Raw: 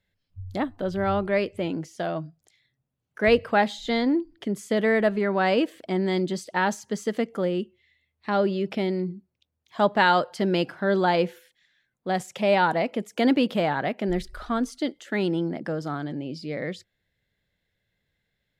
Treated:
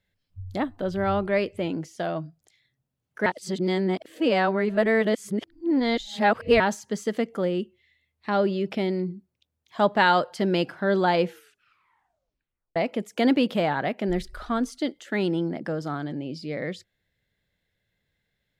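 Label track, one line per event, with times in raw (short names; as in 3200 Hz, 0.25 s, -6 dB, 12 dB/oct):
3.260000	6.600000	reverse
11.260000	11.260000	tape stop 1.50 s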